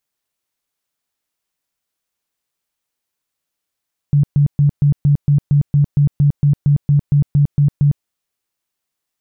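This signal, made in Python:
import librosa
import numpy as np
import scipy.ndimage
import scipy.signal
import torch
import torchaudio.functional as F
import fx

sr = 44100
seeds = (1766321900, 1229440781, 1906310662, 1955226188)

y = fx.tone_burst(sr, hz=144.0, cycles=15, every_s=0.23, bursts=17, level_db=-8.5)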